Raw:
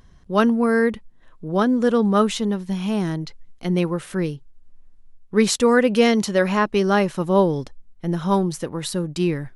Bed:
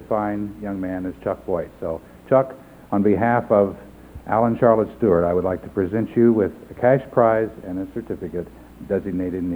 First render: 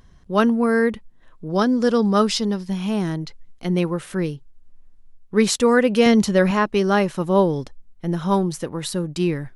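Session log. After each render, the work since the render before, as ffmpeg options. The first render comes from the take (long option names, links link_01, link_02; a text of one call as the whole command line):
ffmpeg -i in.wav -filter_complex "[0:a]asettb=1/sr,asplit=3[link_01][link_02][link_03];[link_01]atrim=end=1.494[link_04];[link_02]atrim=start=1.49:end=2.68,asetpts=PTS-STARTPTS,afade=type=in:duration=0.004:curve=qsin,afade=type=out:start_time=1.186:duration=0.004:curve=qsin,equalizer=frequency=5000:width_type=o:width=0.34:gain=15[link_05];[link_03]atrim=start=2.676[link_06];[link_04][link_05]acrossfade=duration=0.004:curve1=hsin:curve2=qsin[link_07];[link_07][link_06]acrossfade=duration=0.004:curve1=qsin:curve2=hsin,asettb=1/sr,asplit=3[link_08][link_09][link_10];[link_08]atrim=end=6.064[link_11];[link_09]atrim=start=6.06:end=6.51,asetpts=PTS-STARTPTS,afade=type=in:duration=0.004:curve=qsin,afade=type=out:start_time=0.446:duration=0.004:curve=qsin,lowshelf=frequency=190:gain=10.5[link_12];[link_10]atrim=start=6.506[link_13];[link_11][link_12]acrossfade=duration=0.004:curve1=hsin:curve2=qsin[link_14];[link_14][link_13]acrossfade=duration=0.004:curve1=qsin:curve2=hsin" out.wav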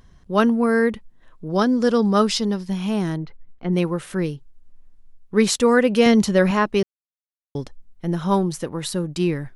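ffmpeg -i in.wav -filter_complex "[0:a]asettb=1/sr,asplit=3[link_01][link_02][link_03];[link_01]atrim=end=3.174[link_04];[link_02]atrim=start=3.17:end=3.73,asetpts=PTS-STARTPTS,afade=type=in:duration=0.004:curve=qsin,afade=type=out:start_time=0.556:duration=0.004:curve=qsin,lowpass=1900[link_05];[link_03]atrim=start=3.726[link_06];[link_04][link_05]acrossfade=duration=0.004:curve1=hsin:curve2=qsin[link_07];[link_07][link_06]acrossfade=duration=0.004:curve1=qsin:curve2=hsin,asplit=3[link_08][link_09][link_10];[link_08]atrim=end=6.83,asetpts=PTS-STARTPTS,afade=type=out:start_time=6.826:duration=0.004:curve=hsin[link_11];[link_09]atrim=start=6.83:end=7.55,asetpts=PTS-STARTPTS,volume=0[link_12];[link_10]atrim=start=7.55,asetpts=PTS-STARTPTS,afade=type=in:duration=0.004:curve=hsin[link_13];[link_11][link_12][link_13]concat=n=3:v=0:a=1" out.wav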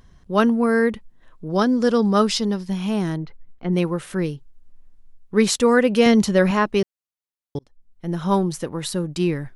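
ffmpeg -i in.wav -filter_complex "[0:a]asplit=2[link_01][link_02];[link_01]atrim=end=7.59,asetpts=PTS-STARTPTS,afade=type=out:start_time=7.586:duration=0.004:curve=hsin[link_03];[link_02]atrim=start=7.59,asetpts=PTS-STARTPTS,afade=type=in:duration=0.68[link_04];[link_03][link_04]concat=n=2:v=0:a=1" out.wav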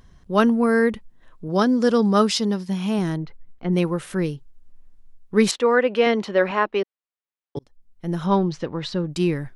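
ffmpeg -i in.wav -filter_complex "[0:a]asettb=1/sr,asplit=3[link_01][link_02][link_03];[link_01]atrim=end=1.484[link_04];[link_02]atrim=start=1.48:end=2.99,asetpts=PTS-STARTPTS,afade=type=in:duration=0.004:curve=qsin,afade=type=out:start_time=1.506:duration=0.004:curve=qsin,highpass=49[link_05];[link_03]atrim=start=2.986[link_06];[link_04][link_05]acrossfade=duration=0.004:curve1=hsin:curve2=qsin[link_07];[link_07][link_06]acrossfade=duration=0.004:curve1=qsin:curve2=hsin,asettb=1/sr,asplit=3[link_08][link_09][link_10];[link_08]atrim=end=5.514[link_11];[link_09]atrim=start=5.51:end=7.57,asetpts=PTS-STARTPTS,afade=type=in:duration=0.004:curve=qsin,afade=type=out:start_time=2.056:duration=0.004:curve=qsin,acrossover=split=290 3800:gain=0.0891 1 0.0708[link_12][link_13][link_14];[link_12][link_13][link_14]amix=inputs=3:normalize=0[link_15];[link_10]atrim=start=7.566[link_16];[link_11][link_15]acrossfade=duration=0.004:curve1=hsin:curve2=qsin[link_17];[link_17][link_16]acrossfade=duration=0.004:curve1=qsin:curve2=hsin,asettb=1/sr,asplit=3[link_18][link_19][link_20];[link_18]atrim=end=8.264[link_21];[link_19]atrim=start=8.26:end=9.1,asetpts=PTS-STARTPTS,afade=type=in:duration=0.004:curve=qsin,afade=type=out:start_time=0.836:duration=0.004:curve=qsin,lowpass=frequency=5000:width=0.5412,lowpass=frequency=5000:width=1.3066[link_22];[link_20]atrim=start=9.096[link_23];[link_21][link_22]acrossfade=duration=0.004:curve1=hsin:curve2=qsin[link_24];[link_24][link_23]acrossfade=duration=0.004:curve1=qsin:curve2=hsin" out.wav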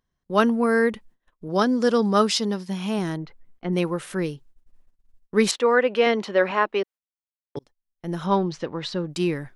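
ffmpeg -i in.wav -af "agate=range=-22dB:threshold=-42dB:ratio=16:detection=peak,lowshelf=frequency=180:gain=-8.5" out.wav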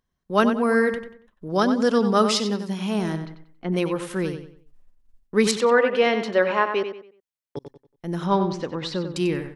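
ffmpeg -i in.wav -filter_complex "[0:a]asplit=2[link_01][link_02];[link_02]adelay=93,lowpass=frequency=4300:poles=1,volume=-8dB,asplit=2[link_03][link_04];[link_04]adelay=93,lowpass=frequency=4300:poles=1,volume=0.34,asplit=2[link_05][link_06];[link_06]adelay=93,lowpass=frequency=4300:poles=1,volume=0.34,asplit=2[link_07][link_08];[link_08]adelay=93,lowpass=frequency=4300:poles=1,volume=0.34[link_09];[link_01][link_03][link_05][link_07][link_09]amix=inputs=5:normalize=0" out.wav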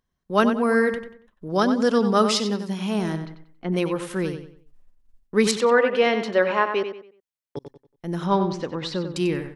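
ffmpeg -i in.wav -af anull out.wav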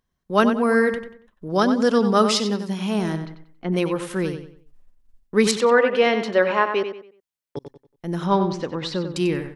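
ffmpeg -i in.wav -af "volume=1.5dB" out.wav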